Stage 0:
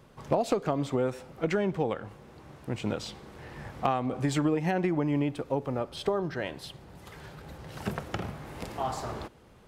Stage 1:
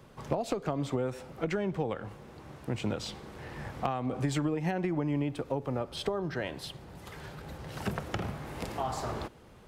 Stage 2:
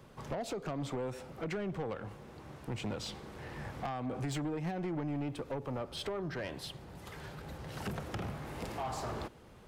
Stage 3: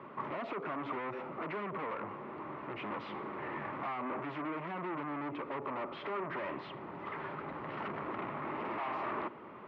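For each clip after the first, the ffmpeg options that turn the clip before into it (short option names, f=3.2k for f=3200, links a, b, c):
-filter_complex "[0:a]acrossover=split=120[a][b];[b]acompressor=threshold=-32dB:ratio=2.5[c];[a][c]amix=inputs=2:normalize=0,volume=1.5dB"
-af "asoftclip=type=tanh:threshold=-30dB,volume=-1.5dB"
-af "aeval=exprs='0.0282*(cos(1*acos(clip(val(0)/0.0282,-1,1)))-cos(1*PI/2))+0.0126*(cos(5*acos(clip(val(0)/0.0282,-1,1)))-cos(5*PI/2))':c=same,highpass=360,equalizer=f=490:t=q:w=4:g=-10,equalizer=f=750:t=q:w=4:g=-8,equalizer=f=1.1k:t=q:w=4:g=3,equalizer=f=1.6k:t=q:w=4:g=-9,lowpass=f=2k:w=0.5412,lowpass=f=2k:w=1.3066,volume=4.5dB"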